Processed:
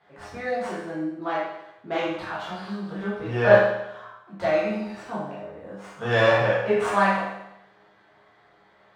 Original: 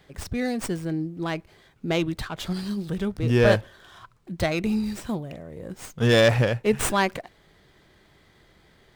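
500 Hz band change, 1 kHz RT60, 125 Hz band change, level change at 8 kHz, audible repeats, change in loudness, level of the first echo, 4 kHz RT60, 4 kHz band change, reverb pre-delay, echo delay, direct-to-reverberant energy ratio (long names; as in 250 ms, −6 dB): +2.5 dB, 0.80 s, −6.5 dB, below −10 dB, no echo audible, 0.0 dB, no echo audible, 0.80 s, −5.0 dB, 10 ms, no echo audible, −9.5 dB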